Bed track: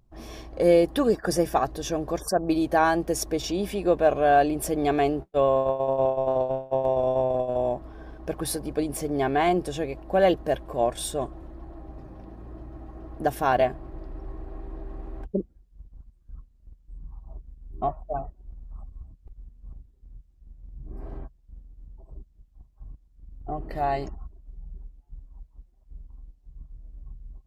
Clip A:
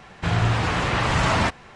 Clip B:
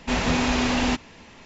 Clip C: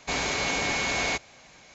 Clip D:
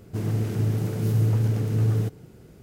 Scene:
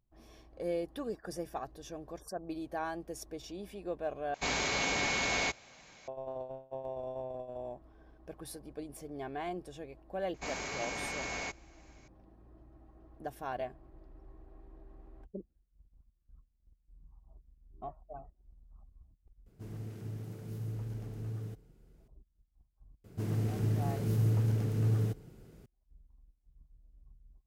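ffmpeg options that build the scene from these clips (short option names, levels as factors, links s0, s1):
-filter_complex "[3:a]asplit=2[s0][s1];[4:a]asplit=2[s2][s3];[0:a]volume=0.15[s4];[s1]equalizer=f=3600:w=2.2:g=-6[s5];[s4]asplit=2[s6][s7];[s6]atrim=end=4.344[s8];[s0]atrim=end=1.74,asetpts=PTS-STARTPTS,volume=0.596[s9];[s7]atrim=start=6.076[s10];[s5]atrim=end=1.74,asetpts=PTS-STARTPTS,volume=0.299,afade=t=in:d=0.004:c=hsin,afade=t=out:st=1.736:d=0.004:c=hsin,adelay=455994S[s11];[s2]atrim=end=2.62,asetpts=PTS-STARTPTS,volume=0.133,afade=t=in:d=0.004:c=hsin,afade=t=out:st=2.616:d=0.004:c=hsin,adelay=19460[s12];[s3]atrim=end=2.62,asetpts=PTS-STARTPTS,volume=0.447,afade=t=in:d=0.004:c=hsin,afade=t=out:st=2.616:d=0.004:c=hsin,adelay=23040[s13];[s8][s9]acrossfade=d=0.004:c1=hsin:c2=hsin[s14];[s14][s10]acrossfade=d=0.004:c1=hsin:c2=hsin[s15];[s15][s11][s12][s13]amix=inputs=4:normalize=0"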